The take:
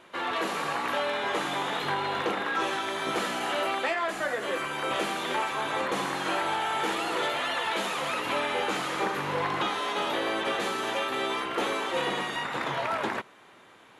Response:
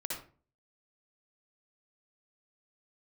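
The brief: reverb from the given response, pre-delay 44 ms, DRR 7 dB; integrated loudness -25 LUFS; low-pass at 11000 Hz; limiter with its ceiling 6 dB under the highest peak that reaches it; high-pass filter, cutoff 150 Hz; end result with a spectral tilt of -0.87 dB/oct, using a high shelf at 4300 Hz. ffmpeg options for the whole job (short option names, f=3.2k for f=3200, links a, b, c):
-filter_complex "[0:a]highpass=150,lowpass=11k,highshelf=f=4.3k:g=-6,alimiter=limit=-23dB:level=0:latency=1,asplit=2[a][b];[1:a]atrim=start_sample=2205,adelay=44[c];[b][c]afir=irnorm=-1:irlink=0,volume=-9dB[d];[a][d]amix=inputs=2:normalize=0,volume=6dB"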